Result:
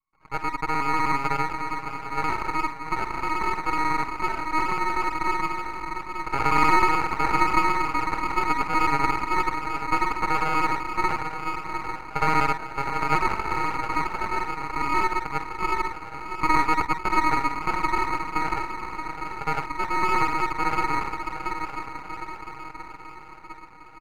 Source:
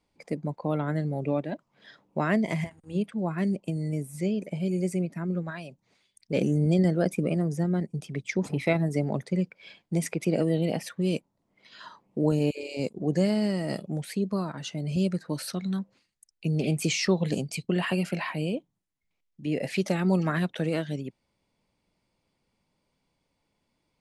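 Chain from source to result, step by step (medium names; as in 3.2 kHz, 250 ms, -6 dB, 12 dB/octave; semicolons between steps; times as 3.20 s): time reversed locally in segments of 62 ms; gate with hold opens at -58 dBFS; inverse Chebyshev low-pass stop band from 1.6 kHz, stop band 70 dB; tilt EQ -4 dB/octave; comb 6.8 ms, depth 87%; echo that smears into a reverb 788 ms, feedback 56%, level -7 dB; ring modulator 1.1 kHz; on a send at -10 dB: reverberation, pre-delay 46 ms; on the sum: half-wave rectifier; trim -3 dB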